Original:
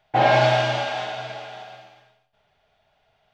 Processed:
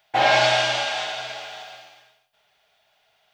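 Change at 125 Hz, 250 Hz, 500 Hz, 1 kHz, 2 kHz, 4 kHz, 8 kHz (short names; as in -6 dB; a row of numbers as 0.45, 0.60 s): -10.5 dB, -6.5 dB, -2.5 dB, -1.0 dB, +3.0 dB, +6.0 dB, n/a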